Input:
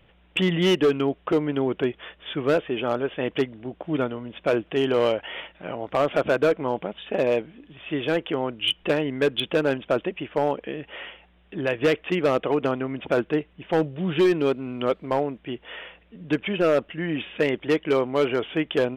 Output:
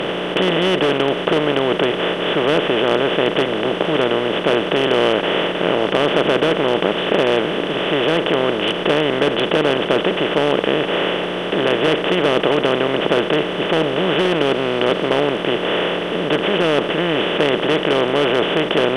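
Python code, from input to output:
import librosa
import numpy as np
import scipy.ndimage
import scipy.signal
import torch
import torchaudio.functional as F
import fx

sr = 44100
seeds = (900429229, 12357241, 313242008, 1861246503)

y = fx.bin_compress(x, sr, power=0.2)
y = fx.high_shelf(y, sr, hz=8500.0, db=-8.5)
y = y * librosa.db_to_amplitude(-3.0)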